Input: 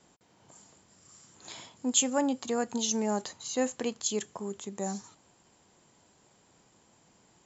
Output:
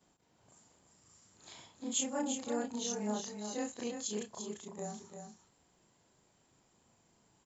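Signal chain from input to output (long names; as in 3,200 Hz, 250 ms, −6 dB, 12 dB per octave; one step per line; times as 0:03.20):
every overlapping window played backwards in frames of 76 ms
low-shelf EQ 98 Hz +6 dB
single-tap delay 344 ms −7 dB
level −5 dB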